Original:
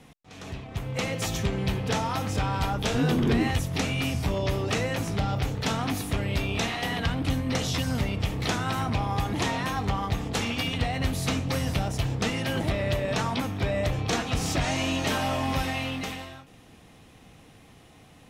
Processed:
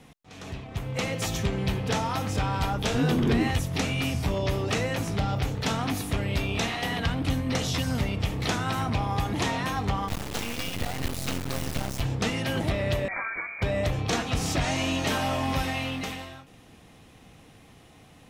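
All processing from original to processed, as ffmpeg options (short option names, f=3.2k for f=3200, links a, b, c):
-filter_complex "[0:a]asettb=1/sr,asplit=3[a][b][c];[a]atrim=end=10.084[d];[b]atrim=start=10.08:end=12.01,asetpts=PTS-STARTPTS,afade=t=in:d=0.004:c=qsin,afade=t=out:st=1.926:d=0.004:c=qsin,bandreject=f=108.4:t=h:w=4,bandreject=f=216.8:t=h:w=4,bandreject=f=325.2:t=h:w=4,bandreject=f=433.6:t=h:w=4,bandreject=f=542:t=h:w=4,bandreject=f=650.4:t=h:w=4,bandreject=f=758.8:t=h:w=4,bandreject=f=867.2:t=h:w=4,bandreject=f=975.6:t=h:w=4,bandreject=f=1.084k:t=h:w=4,bandreject=f=1.1924k:t=h:w=4,bandreject=f=1.3008k:t=h:w=4,bandreject=f=1.4092k:t=h:w=4,bandreject=f=1.5176k:t=h:w=4,bandreject=f=1.626k:t=h:w=4,bandreject=f=1.7344k:t=h:w=4,bandreject=f=1.8428k:t=h:w=4,bandreject=f=1.9512k:t=h:w=4,acrusher=bits=3:dc=4:mix=0:aa=0.000001[e];[c]atrim=start=12.006[f];[d][e]acrossfade=d=0.004:c1=hsin:c2=qsin[g];[g][f]acrossfade=d=0.004:c1=qsin:c2=hsin,asettb=1/sr,asplit=3[h][i][j];[h]atrim=end=13.084[k];[i]atrim=start=13.08:end=13.62,asetpts=PTS-STARTPTS,afade=t=in:d=0.004:c=qsin,afade=t=out:st=0.536:d=0.004:c=qsin,highpass=f=250:p=1,equalizer=f=560:t=o:w=1.2:g=-7,lowpass=f=2.1k:t=q:w=0.5098,lowpass=f=2.1k:t=q:w=0.6013,lowpass=f=2.1k:t=q:w=0.9,lowpass=f=2.1k:t=q:w=2.563,afreqshift=-2500[l];[j]atrim=start=13.616[m];[k][l]acrossfade=d=0.004:c1=hsin:c2=qsin[n];[n][m]acrossfade=d=0.004:c1=qsin:c2=hsin"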